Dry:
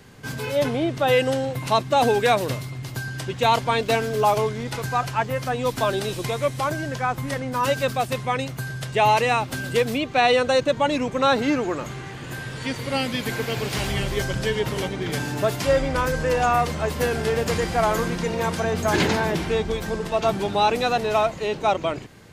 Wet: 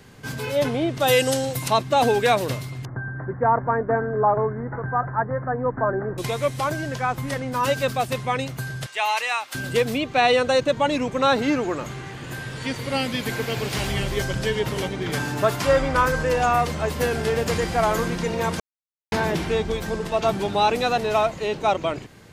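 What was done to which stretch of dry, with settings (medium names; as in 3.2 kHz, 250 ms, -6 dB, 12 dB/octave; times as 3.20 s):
1.00–1.68 s: tone controls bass 0 dB, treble +13 dB
2.85–6.18 s: steep low-pass 1.8 kHz 72 dB/octave
8.86–9.55 s: high-pass 1.1 kHz
15.02–16.23 s: dynamic bell 1.2 kHz, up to +7 dB, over -38 dBFS, Q 1.5
18.60–19.12 s: mute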